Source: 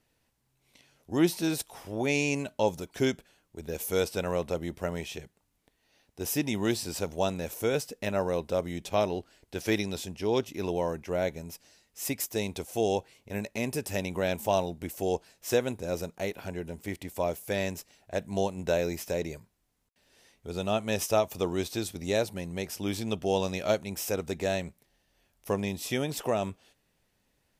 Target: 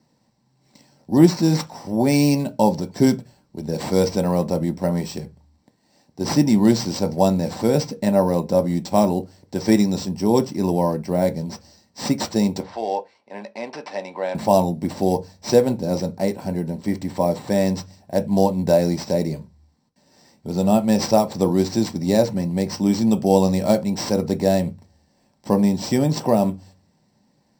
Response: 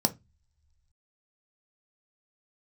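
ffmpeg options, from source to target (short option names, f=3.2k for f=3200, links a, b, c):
-filter_complex "[0:a]acrusher=samples=4:mix=1:aa=0.000001,asettb=1/sr,asplit=3[a][b][c];[a]atrim=end=12.604[d];[b]atrim=start=12.6:end=14.35,asetpts=PTS-STARTPTS,afade=t=in:d=0.004:c=qsin,afade=t=out:st=1.746:d=0.004:c=qsin,highpass=700,lowpass=3k[e];[c]atrim=start=14.346[f];[d][e]acrossfade=d=0.004:c1=hsin:c2=qsin[g];[g][f]acrossfade=d=0.004:c1=qsin:c2=hsin[h];[1:a]atrim=start_sample=2205,afade=t=out:st=0.43:d=0.01,atrim=end_sample=19404[i];[h][i]afir=irnorm=-1:irlink=0,volume=-2.5dB"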